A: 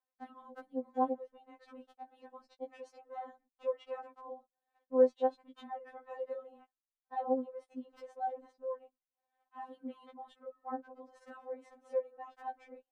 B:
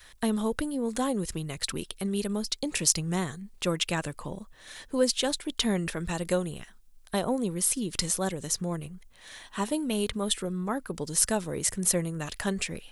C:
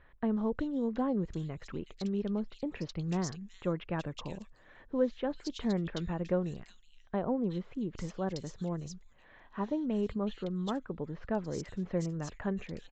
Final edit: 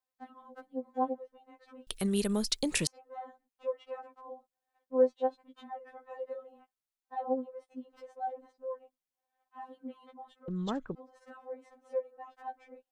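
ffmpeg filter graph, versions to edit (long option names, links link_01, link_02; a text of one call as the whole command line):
ffmpeg -i take0.wav -i take1.wav -i take2.wav -filter_complex "[0:a]asplit=3[link_01][link_02][link_03];[link_01]atrim=end=1.872[link_04];[1:a]atrim=start=1.868:end=2.872[link_05];[link_02]atrim=start=2.868:end=10.482[link_06];[2:a]atrim=start=10.478:end=10.952[link_07];[link_03]atrim=start=10.948[link_08];[link_04][link_05]acrossfade=duration=0.004:curve1=hsin:curve2=hsin[link_09];[link_09][link_06]acrossfade=duration=0.004:curve1=hsin:curve2=hsin[link_10];[link_10][link_07]acrossfade=duration=0.004:curve1=hsin:curve2=hsin[link_11];[link_11][link_08]acrossfade=duration=0.004:curve1=hsin:curve2=hsin" out.wav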